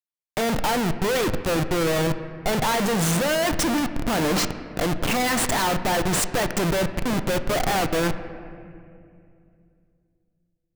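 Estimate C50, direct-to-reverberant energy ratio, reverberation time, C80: 11.0 dB, 9.0 dB, 2.5 s, 12.0 dB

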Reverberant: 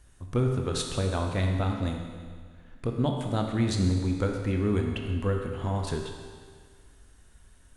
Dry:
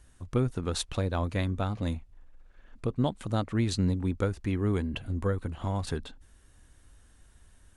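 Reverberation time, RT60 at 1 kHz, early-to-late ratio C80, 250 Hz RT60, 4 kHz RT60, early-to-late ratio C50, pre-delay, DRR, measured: 1.8 s, 1.8 s, 5.0 dB, 1.8 s, 1.8 s, 3.5 dB, 18 ms, 2.0 dB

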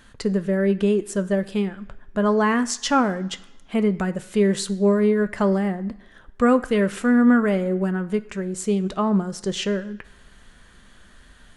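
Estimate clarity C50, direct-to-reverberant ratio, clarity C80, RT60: 17.0 dB, 10.0 dB, 19.5 dB, 1.0 s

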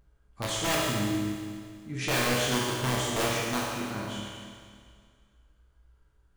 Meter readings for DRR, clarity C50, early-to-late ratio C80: -6.0 dB, -1.5 dB, 0.0 dB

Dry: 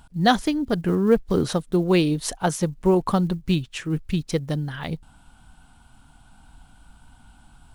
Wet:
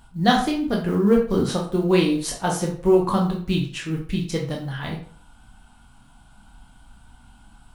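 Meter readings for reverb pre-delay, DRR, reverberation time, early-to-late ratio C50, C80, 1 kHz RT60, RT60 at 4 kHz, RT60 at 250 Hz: 10 ms, -1.0 dB, 0.50 s, 6.5 dB, 11.5 dB, 0.50 s, 0.35 s, 0.45 s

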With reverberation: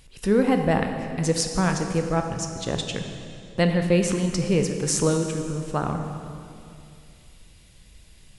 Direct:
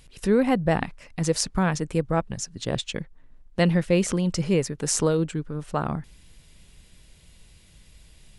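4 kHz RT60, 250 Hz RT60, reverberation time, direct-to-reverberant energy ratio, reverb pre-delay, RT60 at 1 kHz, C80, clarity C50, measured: 2.3 s, 2.8 s, 2.5 s, 4.5 dB, 16 ms, 2.4 s, 7.0 dB, 6.0 dB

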